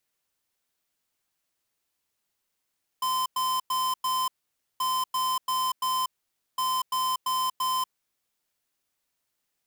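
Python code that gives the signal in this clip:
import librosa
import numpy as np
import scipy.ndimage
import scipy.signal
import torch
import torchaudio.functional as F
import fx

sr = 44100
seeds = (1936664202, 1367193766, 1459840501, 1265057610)

y = fx.beep_pattern(sr, wave='square', hz=1030.0, on_s=0.24, off_s=0.1, beeps=4, pause_s=0.52, groups=3, level_db=-26.5)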